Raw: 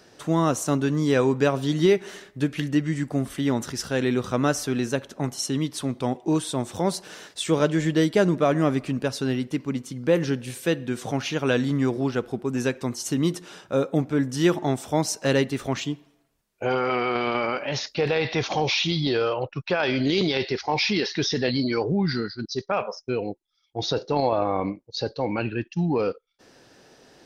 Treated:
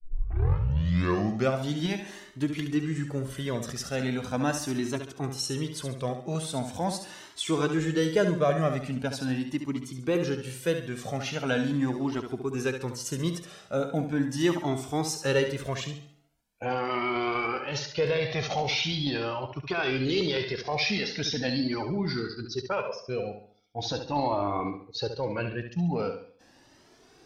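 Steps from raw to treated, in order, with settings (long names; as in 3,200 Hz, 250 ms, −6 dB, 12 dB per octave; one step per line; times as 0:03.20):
turntable start at the beginning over 1.57 s
pitch vibrato 0.52 Hz 19 cents
on a send: flutter between parallel walls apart 11.9 metres, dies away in 0.52 s
on the sum: flanger whose copies keep moving one way rising 0.41 Hz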